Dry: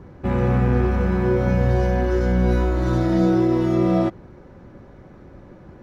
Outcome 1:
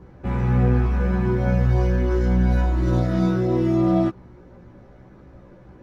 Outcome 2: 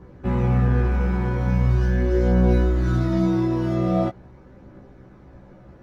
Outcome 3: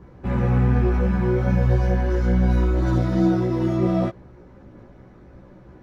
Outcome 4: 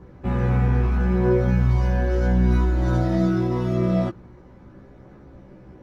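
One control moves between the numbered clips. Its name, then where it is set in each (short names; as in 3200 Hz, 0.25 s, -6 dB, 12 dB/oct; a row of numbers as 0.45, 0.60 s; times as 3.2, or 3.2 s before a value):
chorus, rate: 0.77, 0.21, 2.6, 0.39 Hz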